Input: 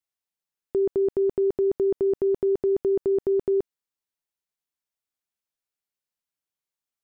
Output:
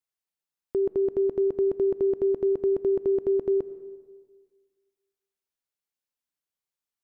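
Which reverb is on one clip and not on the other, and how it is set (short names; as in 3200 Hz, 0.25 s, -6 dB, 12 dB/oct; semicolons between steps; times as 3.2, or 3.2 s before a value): digital reverb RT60 1.6 s, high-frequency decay 0.6×, pre-delay 55 ms, DRR 15 dB; gain -2 dB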